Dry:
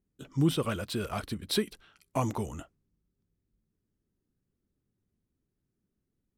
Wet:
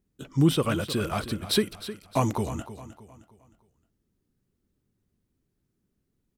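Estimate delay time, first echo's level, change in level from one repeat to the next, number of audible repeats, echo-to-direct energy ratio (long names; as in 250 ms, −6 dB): 310 ms, −13.5 dB, −8.0 dB, 3, −13.0 dB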